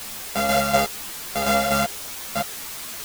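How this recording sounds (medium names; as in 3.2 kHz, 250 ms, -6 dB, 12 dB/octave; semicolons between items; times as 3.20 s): a buzz of ramps at a fixed pitch in blocks of 64 samples; tremolo saw down 4.1 Hz, depth 60%; a quantiser's noise floor 6-bit, dither triangular; a shimmering, thickened sound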